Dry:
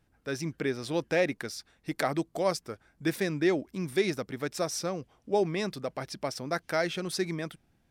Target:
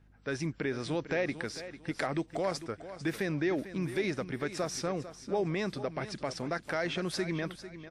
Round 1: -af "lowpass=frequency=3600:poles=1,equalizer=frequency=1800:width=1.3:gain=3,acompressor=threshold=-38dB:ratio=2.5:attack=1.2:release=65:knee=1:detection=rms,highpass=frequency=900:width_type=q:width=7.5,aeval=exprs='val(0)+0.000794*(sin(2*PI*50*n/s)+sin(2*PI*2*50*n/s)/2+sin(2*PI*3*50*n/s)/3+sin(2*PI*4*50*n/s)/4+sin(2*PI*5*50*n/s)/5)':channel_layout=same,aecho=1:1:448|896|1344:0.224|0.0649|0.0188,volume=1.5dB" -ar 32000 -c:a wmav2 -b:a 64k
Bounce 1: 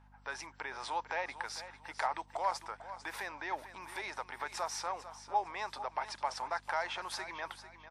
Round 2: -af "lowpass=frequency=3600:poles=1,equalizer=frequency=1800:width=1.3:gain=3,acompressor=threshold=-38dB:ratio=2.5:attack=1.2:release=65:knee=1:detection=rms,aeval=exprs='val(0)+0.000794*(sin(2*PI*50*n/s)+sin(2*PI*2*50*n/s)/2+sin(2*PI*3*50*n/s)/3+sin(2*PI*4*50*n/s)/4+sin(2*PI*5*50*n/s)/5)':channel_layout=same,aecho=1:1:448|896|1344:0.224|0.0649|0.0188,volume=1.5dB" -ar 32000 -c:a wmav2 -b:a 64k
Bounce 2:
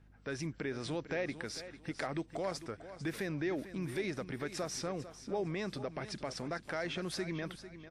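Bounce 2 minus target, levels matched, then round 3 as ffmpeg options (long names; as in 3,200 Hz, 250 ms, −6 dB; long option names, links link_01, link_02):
downward compressor: peak gain reduction +5 dB
-af "lowpass=frequency=3600:poles=1,equalizer=frequency=1800:width=1.3:gain=3,acompressor=threshold=-29.5dB:ratio=2.5:attack=1.2:release=65:knee=1:detection=rms,aeval=exprs='val(0)+0.000794*(sin(2*PI*50*n/s)+sin(2*PI*2*50*n/s)/2+sin(2*PI*3*50*n/s)/3+sin(2*PI*4*50*n/s)/4+sin(2*PI*5*50*n/s)/5)':channel_layout=same,aecho=1:1:448|896|1344:0.224|0.0649|0.0188,volume=1.5dB" -ar 32000 -c:a wmav2 -b:a 64k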